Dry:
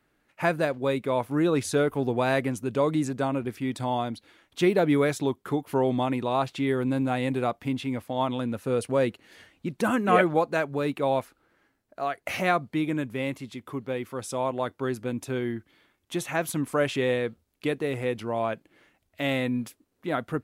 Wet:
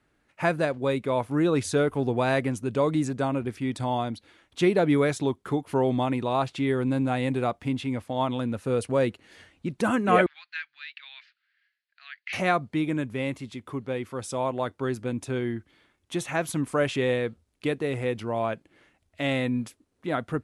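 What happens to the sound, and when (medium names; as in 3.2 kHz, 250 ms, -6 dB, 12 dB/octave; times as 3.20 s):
10.26–12.33 s: elliptic band-pass 1.7–4.7 kHz, stop band 60 dB
whole clip: steep low-pass 11 kHz 36 dB/octave; peaking EQ 68 Hz +5.5 dB 1.5 oct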